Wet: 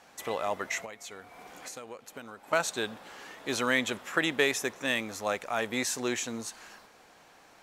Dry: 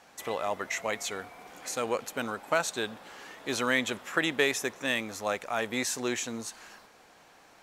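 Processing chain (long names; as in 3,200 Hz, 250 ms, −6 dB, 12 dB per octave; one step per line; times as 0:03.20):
0:00.84–0:02.53: downward compressor 10 to 1, threshold −40 dBFS, peak gain reduction 16 dB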